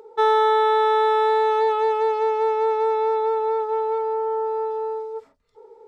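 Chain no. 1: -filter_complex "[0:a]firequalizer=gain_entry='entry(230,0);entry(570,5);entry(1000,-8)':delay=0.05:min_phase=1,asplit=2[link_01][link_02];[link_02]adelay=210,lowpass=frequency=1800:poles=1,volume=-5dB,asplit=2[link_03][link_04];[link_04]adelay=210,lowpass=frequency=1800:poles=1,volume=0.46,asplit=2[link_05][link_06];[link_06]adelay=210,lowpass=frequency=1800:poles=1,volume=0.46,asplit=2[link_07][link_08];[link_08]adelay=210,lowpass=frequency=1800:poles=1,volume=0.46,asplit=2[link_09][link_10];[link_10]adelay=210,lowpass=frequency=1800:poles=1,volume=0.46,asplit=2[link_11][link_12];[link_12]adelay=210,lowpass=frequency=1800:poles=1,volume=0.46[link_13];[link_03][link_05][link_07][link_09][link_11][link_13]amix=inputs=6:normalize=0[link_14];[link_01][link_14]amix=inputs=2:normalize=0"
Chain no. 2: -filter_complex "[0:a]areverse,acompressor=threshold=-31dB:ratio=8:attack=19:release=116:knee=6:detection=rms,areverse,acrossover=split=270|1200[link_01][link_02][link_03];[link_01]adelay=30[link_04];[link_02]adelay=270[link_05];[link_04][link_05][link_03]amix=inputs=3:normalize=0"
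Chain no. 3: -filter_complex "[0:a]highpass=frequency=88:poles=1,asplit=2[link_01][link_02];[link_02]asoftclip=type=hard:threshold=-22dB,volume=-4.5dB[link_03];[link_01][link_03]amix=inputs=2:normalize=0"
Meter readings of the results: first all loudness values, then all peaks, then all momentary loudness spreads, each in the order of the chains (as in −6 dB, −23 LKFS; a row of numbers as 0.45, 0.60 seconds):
−19.5, −34.5, −18.5 LKFS; −9.0, −25.0, −9.5 dBFS; 10, 3, 7 LU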